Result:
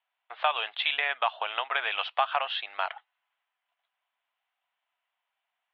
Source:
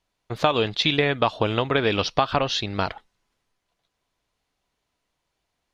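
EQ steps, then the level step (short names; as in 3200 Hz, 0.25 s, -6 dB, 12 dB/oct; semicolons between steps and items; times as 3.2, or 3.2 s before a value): elliptic band-pass 710–3200 Hz, stop band 80 dB; air absorption 280 m; high shelf 2000 Hz +10 dB; -3.5 dB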